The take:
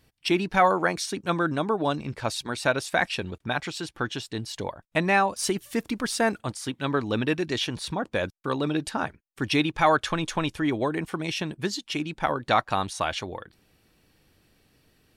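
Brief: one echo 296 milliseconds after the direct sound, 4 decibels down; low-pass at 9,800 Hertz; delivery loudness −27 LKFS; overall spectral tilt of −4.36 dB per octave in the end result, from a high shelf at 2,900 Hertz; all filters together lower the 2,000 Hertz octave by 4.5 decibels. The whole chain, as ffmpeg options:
ffmpeg -i in.wav -af "lowpass=9800,equalizer=frequency=2000:width_type=o:gain=-4.5,highshelf=frequency=2900:gain=-4.5,aecho=1:1:296:0.631" out.wav

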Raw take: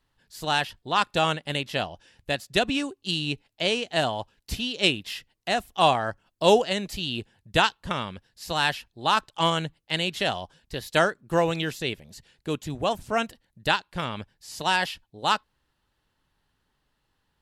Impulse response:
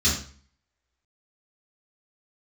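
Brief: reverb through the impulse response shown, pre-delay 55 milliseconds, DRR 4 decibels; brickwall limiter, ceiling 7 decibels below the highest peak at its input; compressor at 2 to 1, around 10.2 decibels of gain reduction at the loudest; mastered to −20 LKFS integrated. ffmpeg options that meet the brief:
-filter_complex "[0:a]acompressor=threshold=-32dB:ratio=2,alimiter=limit=-19.5dB:level=0:latency=1,asplit=2[link_01][link_02];[1:a]atrim=start_sample=2205,adelay=55[link_03];[link_02][link_03]afir=irnorm=-1:irlink=0,volume=-17dB[link_04];[link_01][link_04]amix=inputs=2:normalize=0,volume=12dB"

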